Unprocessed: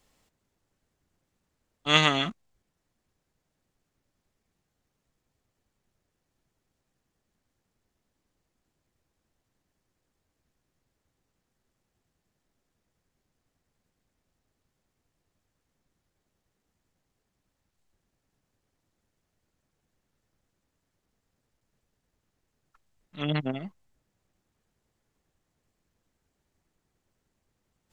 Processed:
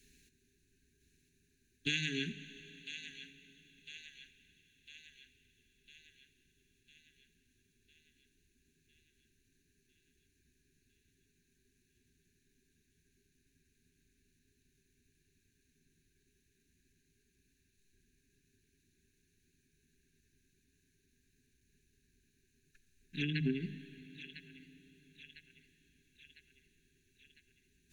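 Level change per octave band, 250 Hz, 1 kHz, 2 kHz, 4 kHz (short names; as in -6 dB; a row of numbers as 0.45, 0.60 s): -5.5 dB, under -40 dB, -9.5 dB, -12.5 dB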